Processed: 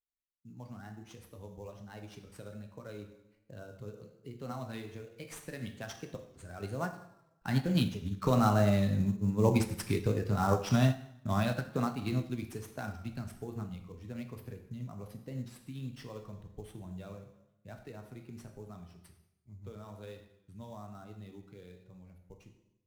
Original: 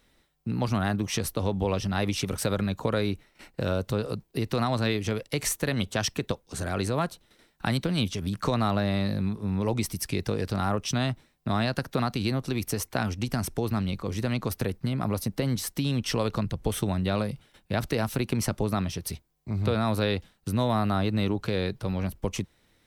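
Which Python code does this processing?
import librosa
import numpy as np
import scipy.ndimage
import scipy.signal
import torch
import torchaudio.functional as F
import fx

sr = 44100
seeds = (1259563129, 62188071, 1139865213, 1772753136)

p1 = fx.bin_expand(x, sr, power=1.5)
p2 = fx.doppler_pass(p1, sr, speed_mps=9, closest_m=13.0, pass_at_s=9.7)
p3 = fx.high_shelf(p2, sr, hz=8500.0, db=-4.0)
p4 = fx.rev_plate(p3, sr, seeds[0], rt60_s=0.89, hf_ratio=0.85, predelay_ms=0, drr_db=3.5)
p5 = fx.sample_hold(p4, sr, seeds[1], rate_hz=6900.0, jitter_pct=20)
p6 = p4 + (p5 * 10.0 ** (-4.0 / 20.0))
p7 = fx.vibrato(p6, sr, rate_hz=1.2, depth_cents=46.0)
y = fx.upward_expand(p7, sr, threshold_db=-36.0, expansion=1.5)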